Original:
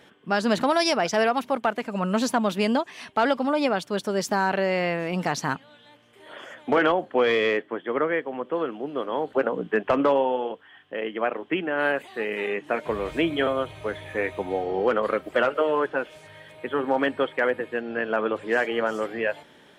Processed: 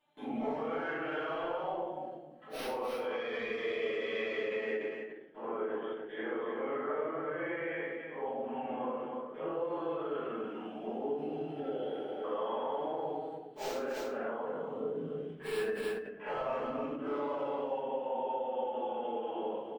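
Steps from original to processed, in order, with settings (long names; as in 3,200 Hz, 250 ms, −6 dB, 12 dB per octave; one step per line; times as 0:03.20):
downward compressor 5 to 1, threshold −31 dBFS, peak gain reduction 13.5 dB
high-shelf EQ 2,300 Hz −3.5 dB
wrap-around overflow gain 20.5 dB
extreme stretch with random phases 5×, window 0.05 s, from 0:06.63
noise gate with hold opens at −42 dBFS
single-tap delay 290 ms −6.5 dB
brickwall limiter −26.5 dBFS, peak gain reduction 9.5 dB
low-shelf EQ 300 Hz −6.5 dB
rectangular room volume 71 cubic metres, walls mixed, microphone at 1.5 metres
healed spectral selection 0:11.31–0:12.22, 640–1,300 Hz before
every ending faded ahead of time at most 110 dB per second
level −7 dB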